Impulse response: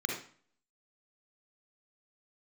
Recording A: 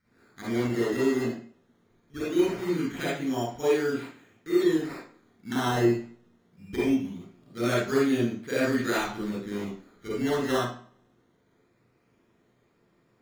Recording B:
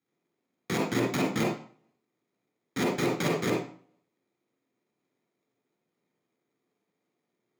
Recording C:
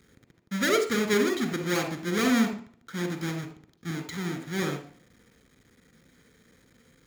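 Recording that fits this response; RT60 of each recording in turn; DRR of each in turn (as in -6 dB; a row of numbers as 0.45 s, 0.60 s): B; 0.45 s, 0.45 s, 0.45 s; -8.0 dB, 0.0 dB, 7.0 dB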